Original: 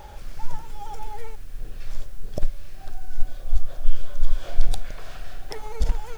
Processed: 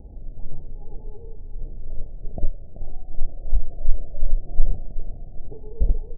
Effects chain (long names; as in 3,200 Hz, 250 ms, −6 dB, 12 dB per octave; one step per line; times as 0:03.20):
lower of the sound and its delayed copy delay 0.88 ms
Butterworth low-pass 680 Hz 72 dB per octave
repeating echo 382 ms, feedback 53%, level −11 dB
0:01.90–0:04.31: one half of a high-frequency compander encoder only
level +3 dB